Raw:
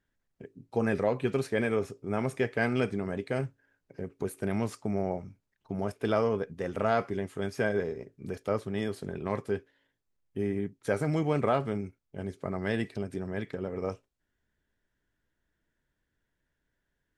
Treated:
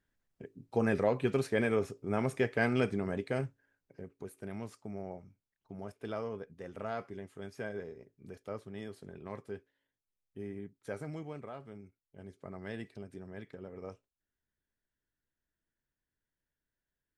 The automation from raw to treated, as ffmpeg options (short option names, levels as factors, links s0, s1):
-af "volume=2.11,afade=t=out:st=3.15:d=1.06:silence=0.316228,afade=t=out:st=10.98:d=0.51:silence=0.398107,afade=t=in:st=11.49:d=1.01:silence=0.398107"